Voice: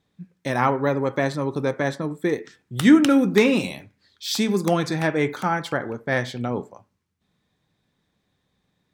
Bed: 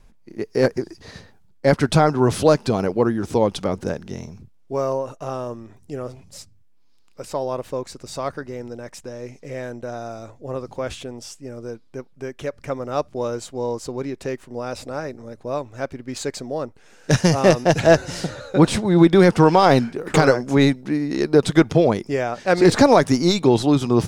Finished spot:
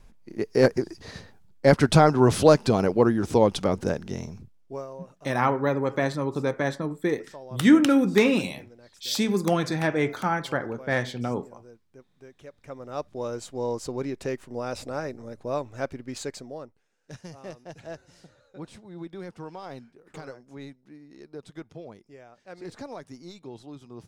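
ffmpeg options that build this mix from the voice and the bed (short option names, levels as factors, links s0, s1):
-filter_complex "[0:a]adelay=4800,volume=0.75[s0];[1:a]volume=4.73,afade=t=out:st=4.35:d=0.52:silence=0.149624,afade=t=in:st=12.53:d=1.26:silence=0.188365,afade=t=out:st=15.85:d=1.03:silence=0.0707946[s1];[s0][s1]amix=inputs=2:normalize=0"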